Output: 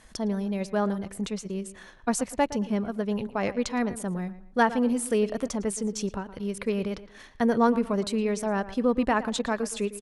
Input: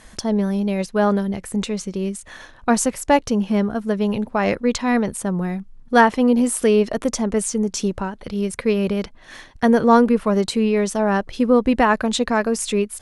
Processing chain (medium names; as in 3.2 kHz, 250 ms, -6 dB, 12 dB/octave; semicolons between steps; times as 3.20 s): tape echo 150 ms, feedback 33%, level -14 dB, low-pass 3.3 kHz; tempo 1.3×; trim -8 dB